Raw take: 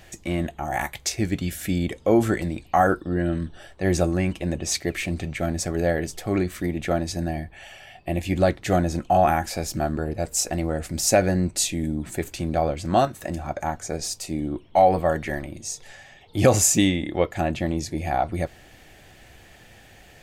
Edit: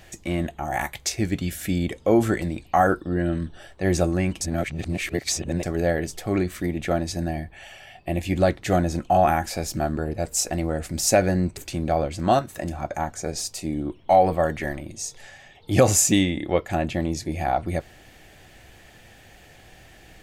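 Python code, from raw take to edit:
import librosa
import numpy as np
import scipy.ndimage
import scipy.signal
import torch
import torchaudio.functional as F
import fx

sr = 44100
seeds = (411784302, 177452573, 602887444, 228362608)

y = fx.edit(x, sr, fx.reverse_span(start_s=4.41, length_s=1.22),
    fx.cut(start_s=11.57, length_s=0.66), tone=tone)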